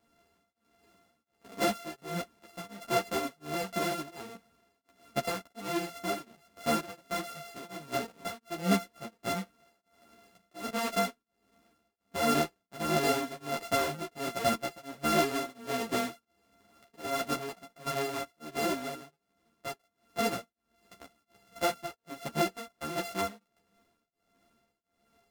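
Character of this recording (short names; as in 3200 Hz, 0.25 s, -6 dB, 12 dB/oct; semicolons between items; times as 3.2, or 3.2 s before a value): a buzz of ramps at a fixed pitch in blocks of 64 samples; tremolo triangle 1.4 Hz, depth 100%; a shimmering, thickened sound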